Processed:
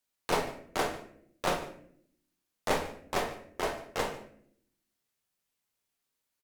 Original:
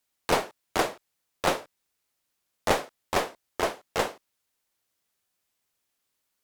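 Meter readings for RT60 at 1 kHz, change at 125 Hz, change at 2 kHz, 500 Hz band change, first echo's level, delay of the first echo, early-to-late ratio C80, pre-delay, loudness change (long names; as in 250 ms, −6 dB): 0.50 s, −3.0 dB, −4.5 dB, −4.5 dB, −18.5 dB, 147 ms, 12.5 dB, 5 ms, −4.5 dB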